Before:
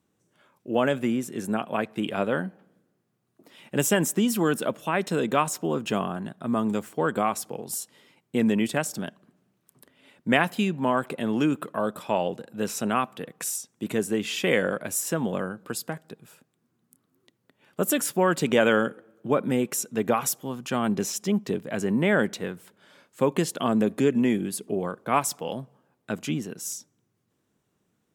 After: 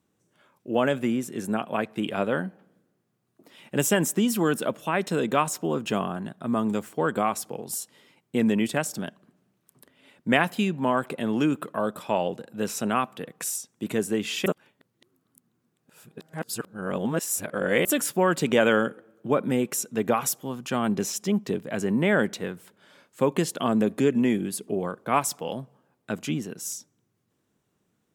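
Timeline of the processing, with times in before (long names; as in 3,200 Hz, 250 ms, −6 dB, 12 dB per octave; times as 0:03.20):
0:14.46–0:17.85: reverse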